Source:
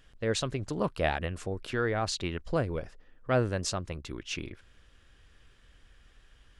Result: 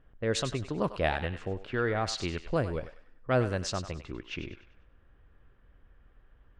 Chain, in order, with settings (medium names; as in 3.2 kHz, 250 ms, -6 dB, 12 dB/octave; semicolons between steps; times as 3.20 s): level-controlled noise filter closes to 1.1 kHz, open at -24 dBFS; on a send: thinning echo 98 ms, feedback 40%, high-pass 830 Hz, level -9.5 dB